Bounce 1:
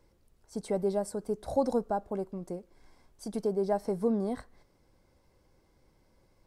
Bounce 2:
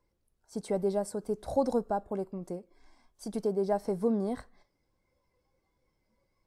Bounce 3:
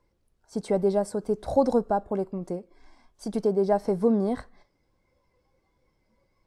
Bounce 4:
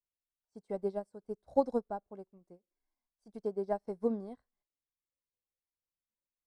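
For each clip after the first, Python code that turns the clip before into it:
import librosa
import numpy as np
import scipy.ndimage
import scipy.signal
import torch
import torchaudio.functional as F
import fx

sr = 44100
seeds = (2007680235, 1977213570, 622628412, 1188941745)

y1 = fx.noise_reduce_blind(x, sr, reduce_db=11)
y2 = fx.high_shelf(y1, sr, hz=9200.0, db=-11.5)
y2 = y2 * librosa.db_to_amplitude(6.0)
y3 = fx.upward_expand(y2, sr, threshold_db=-37.0, expansion=2.5)
y3 = y3 * librosa.db_to_amplitude(-5.0)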